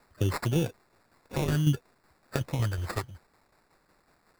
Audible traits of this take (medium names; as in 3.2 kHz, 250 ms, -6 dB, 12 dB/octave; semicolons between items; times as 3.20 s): a quantiser's noise floor 12-bit, dither triangular; tremolo saw down 5.4 Hz, depth 55%; phasing stages 2, 0.6 Hz, lowest notch 220–1300 Hz; aliases and images of a low sample rate 3.1 kHz, jitter 0%